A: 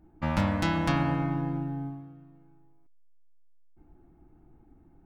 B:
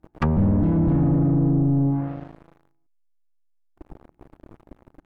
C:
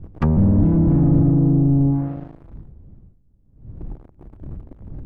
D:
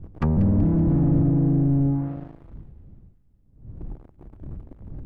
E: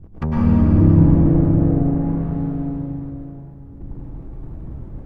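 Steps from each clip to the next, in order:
waveshaping leveller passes 5; low-pass that closes with the level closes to 370 Hz, closed at -16 dBFS
wind noise 100 Hz -37 dBFS; tilt shelf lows +4.5 dB, about 660 Hz
in parallel at -10 dB: saturation -23.5 dBFS, distortion -7 dB; on the sum: feedback echo behind a high-pass 189 ms, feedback 57%, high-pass 2.1 kHz, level -11.5 dB; trim -5 dB
plate-style reverb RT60 3.8 s, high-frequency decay 0.85×, pre-delay 90 ms, DRR -7.5 dB; trim -1.5 dB

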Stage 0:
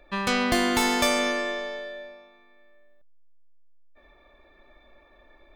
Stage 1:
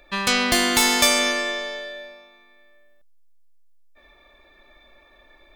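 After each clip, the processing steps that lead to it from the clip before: treble shelf 2.1 kHz +11 dB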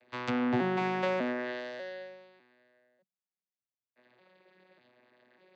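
vocoder on a broken chord bare fifth, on B2, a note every 597 ms; low-pass that closes with the level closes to 1.9 kHz, closed at -20 dBFS; trim -8.5 dB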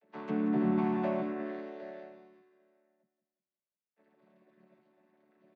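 vocoder on a held chord major triad, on D3; on a send: feedback delay 181 ms, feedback 42%, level -11 dB

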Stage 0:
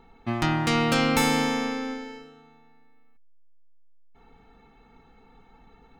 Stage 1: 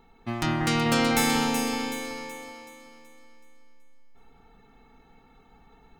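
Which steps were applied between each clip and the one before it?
treble shelf 5.8 kHz +9 dB; on a send: echo whose repeats swap between lows and highs 188 ms, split 2 kHz, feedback 66%, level -2.5 dB; on the sum: trim -3.5 dB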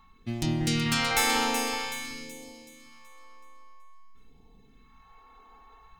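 whistle 1.1 kHz -55 dBFS; phase shifter stages 2, 0.5 Hz, lowest notch 120–1300 Hz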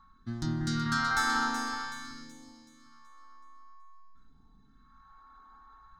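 FFT filter 300 Hz 0 dB, 490 Hz -16 dB, 1.5 kHz +11 dB, 2.5 kHz -21 dB, 3.9 kHz -2 dB, 5.9 kHz -3 dB, 13 kHz -17 dB; trim -3.5 dB

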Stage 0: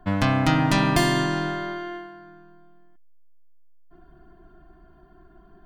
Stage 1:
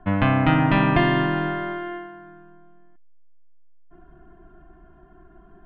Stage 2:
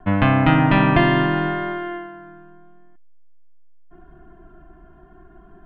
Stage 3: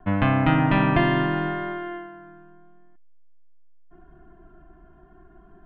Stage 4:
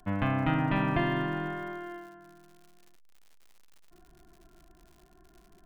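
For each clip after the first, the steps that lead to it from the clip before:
steep low-pass 3 kHz 36 dB/octave; trim +2 dB
vibrato 0.81 Hz 13 cents; trim +3 dB
distance through air 72 m; trim -4 dB
crackle 140 per s -39 dBFS; trim -8 dB

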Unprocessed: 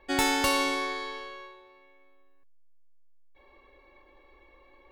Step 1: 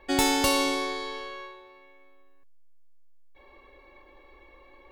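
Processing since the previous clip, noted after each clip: dynamic bell 1.6 kHz, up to -7 dB, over -43 dBFS, Q 0.96; trim +4 dB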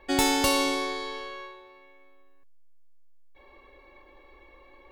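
no audible change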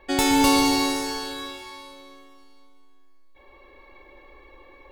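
plate-style reverb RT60 2.5 s, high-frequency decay 1×, pre-delay 105 ms, DRR 1 dB; trim +1.5 dB

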